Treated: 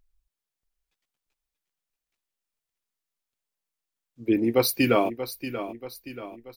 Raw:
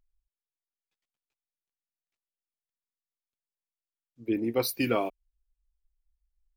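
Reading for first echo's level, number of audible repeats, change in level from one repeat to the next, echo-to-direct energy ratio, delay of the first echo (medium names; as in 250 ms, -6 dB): -11.5 dB, 3, -6.0 dB, -10.5 dB, 633 ms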